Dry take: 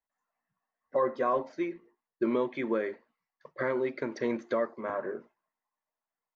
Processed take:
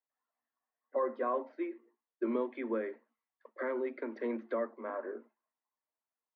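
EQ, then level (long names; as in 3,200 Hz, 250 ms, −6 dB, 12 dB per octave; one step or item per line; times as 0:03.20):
Chebyshev high-pass filter 220 Hz, order 10
high-frequency loss of the air 360 metres
−3.5 dB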